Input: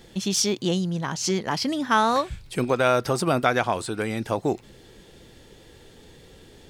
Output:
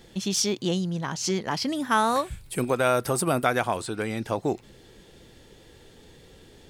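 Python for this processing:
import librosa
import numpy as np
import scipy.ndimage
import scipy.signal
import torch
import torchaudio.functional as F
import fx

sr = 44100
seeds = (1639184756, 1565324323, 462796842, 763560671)

y = fx.high_shelf_res(x, sr, hz=7300.0, db=8.0, q=1.5, at=(1.75, 3.77))
y = y * 10.0 ** (-2.0 / 20.0)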